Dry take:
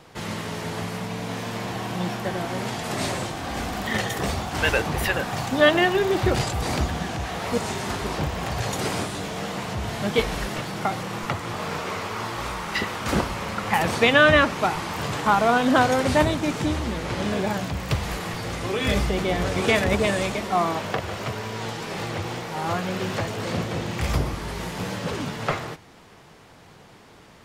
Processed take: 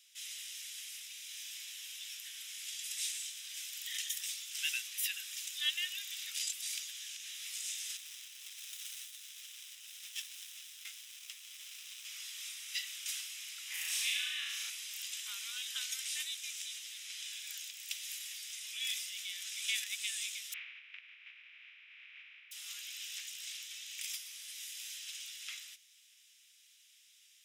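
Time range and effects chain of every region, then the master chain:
0:07.97–0:12.05: high-shelf EQ 9,800 Hz +5 dB + windowed peak hold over 17 samples
0:13.68–0:14.70: parametric band 610 Hz +14 dB 1.2 octaves + downward compressor, threshold −14 dBFS + flutter between parallel walls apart 6.1 metres, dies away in 1.3 s
0:20.52–0:22.51: compressing power law on the bin magnitudes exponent 0.16 + elliptic low-pass filter 2,400 Hz, stop band 80 dB
whole clip: inverse Chebyshev high-pass filter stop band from 620 Hz, stop band 70 dB; high-shelf EQ 4,200 Hz +7.5 dB; notch filter 4,400 Hz, Q 5.4; level −7.5 dB

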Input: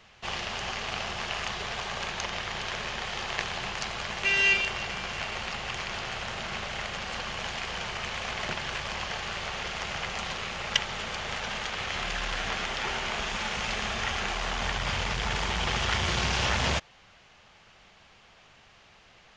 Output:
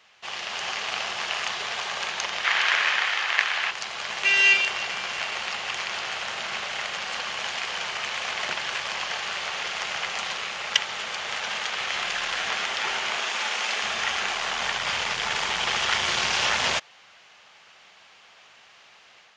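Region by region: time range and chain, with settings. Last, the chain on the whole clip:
0:02.44–0:03.71: high-pass filter 240 Hz 6 dB per octave + parametric band 1,800 Hz +11.5 dB 1.9 octaves
0:13.18–0:13.83: high-pass filter 230 Hz 24 dB per octave + flutter between parallel walls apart 10.1 metres, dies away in 0.23 s
whole clip: high-pass filter 840 Hz 6 dB per octave; automatic gain control gain up to 5.5 dB

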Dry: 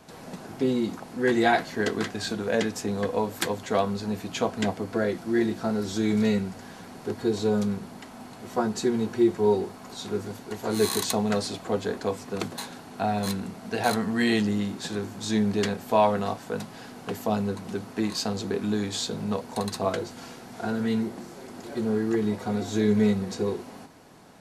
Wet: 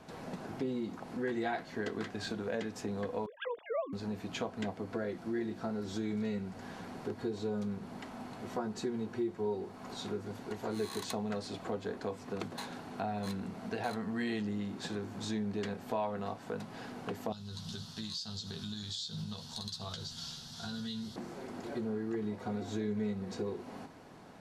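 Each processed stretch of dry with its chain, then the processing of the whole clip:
0:03.26–0:03.93: three sine waves on the formant tracks + notch filter 770 Hz, Q 9.3
0:17.32–0:21.16: drawn EQ curve 170 Hz 0 dB, 290 Hz −19 dB, 600 Hz −16 dB, 1,500 Hz −7 dB, 2,300 Hz −13 dB, 3,400 Hz +12 dB, 5,100 Hz +12 dB, 9,300 Hz +3 dB + downward compressor 3 to 1, threshold −33 dBFS + double-tracking delay 13 ms −5.5 dB
whole clip: high-shelf EQ 5,700 Hz −11 dB; downward compressor 2.5 to 1, threshold −36 dBFS; level −1.5 dB

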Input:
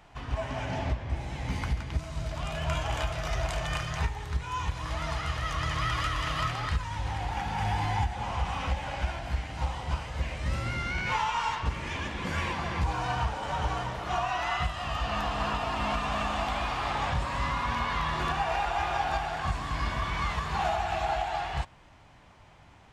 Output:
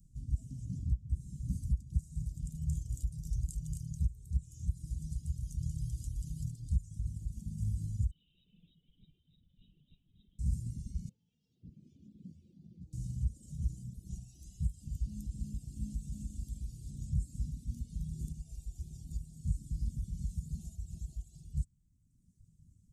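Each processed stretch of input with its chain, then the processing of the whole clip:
0:08.11–0:10.39: high-pass filter 790 Hz 6 dB per octave + voice inversion scrambler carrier 3,800 Hz
0:11.09–0:12.93: high-pass filter 280 Hz + downward compressor 3 to 1, threshold −32 dBFS + high-frequency loss of the air 330 metres
whole clip: elliptic band-stop filter 190–7,700 Hz, stop band 80 dB; reverb reduction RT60 1.5 s

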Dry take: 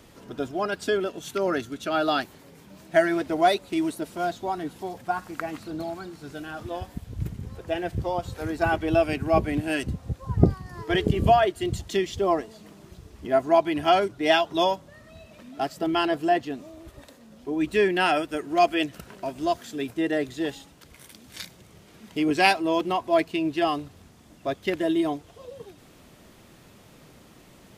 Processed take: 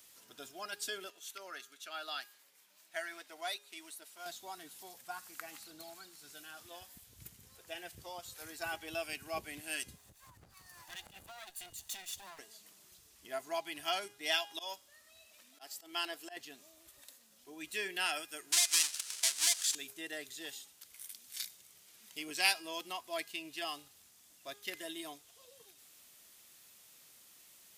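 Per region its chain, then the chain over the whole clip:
0:01.10–0:04.26: high-pass filter 870 Hz 6 dB per octave + high-shelf EQ 3,800 Hz −9 dB
0:09.96–0:12.39: lower of the sound and its delayed copy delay 1.1 ms + notch filter 5,300 Hz, Q 21 + downward compressor 8 to 1, threshold −31 dBFS
0:14.38–0:16.37: parametric band 150 Hz −13 dB 0.65 octaves + volume swells 139 ms
0:18.52–0:19.75: each half-wave held at its own peak + meter weighting curve ITU-R 468 + downward compressor 16 to 1, threshold −17 dBFS
whole clip: first-order pre-emphasis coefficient 0.97; hum removal 409.5 Hz, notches 30; level +1 dB

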